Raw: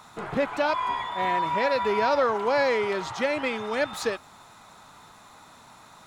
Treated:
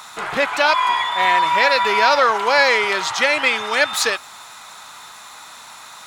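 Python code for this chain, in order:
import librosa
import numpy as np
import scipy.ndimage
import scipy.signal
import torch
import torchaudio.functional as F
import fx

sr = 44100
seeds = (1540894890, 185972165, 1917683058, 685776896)

y = fx.tilt_shelf(x, sr, db=-10.0, hz=670.0)
y = F.gain(torch.from_numpy(y), 6.0).numpy()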